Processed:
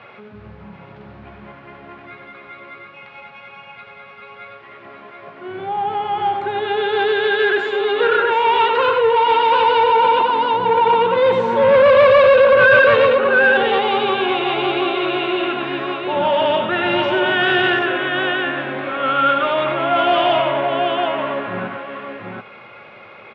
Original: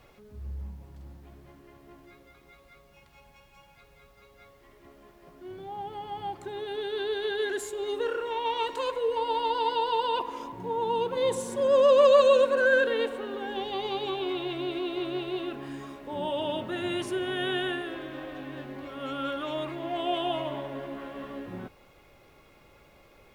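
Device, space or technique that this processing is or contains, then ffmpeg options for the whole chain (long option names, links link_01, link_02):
overdrive pedal into a guitar cabinet: -filter_complex "[0:a]asettb=1/sr,asplit=3[link_01][link_02][link_03];[link_01]atrim=end=9.834[link_04];[link_02]atrim=start=9.83:end=10.45,asetpts=PTS-STARTPTS,afade=type=in:duration=0.004:curve=qsin,afade=type=out:start_time=0.616:duration=0.004:curve=qsin,tiltshelf=frequency=650:gain=6[link_05];[link_03]atrim=start=10.446[link_06];[link_04][link_05]acrossfade=duration=0.004:curve1=hsin:curve2=qsin[link_07];[link_07][link_06]acrossfade=duration=0.004:curve1=qsin:curve2=hsin,aecho=1:1:94|731:0.447|0.562,asplit=2[link_08][link_09];[link_09]highpass=frequency=720:poles=1,volume=22dB,asoftclip=type=tanh:threshold=-6dB[link_10];[link_08][link_10]amix=inputs=2:normalize=0,lowpass=frequency=1900:poles=1,volume=-6dB,highpass=110,equalizer=frequency=110:width_type=q:width=4:gain=10,equalizer=frequency=210:width_type=q:width=4:gain=6,equalizer=frequency=300:width_type=q:width=4:gain=-7,equalizer=frequency=1400:width_type=q:width=4:gain=5,equalizer=frequency=2400:width_type=q:width=4:gain=5,lowpass=frequency=3800:width=0.5412,lowpass=frequency=3800:width=1.3066,volume=2.5dB"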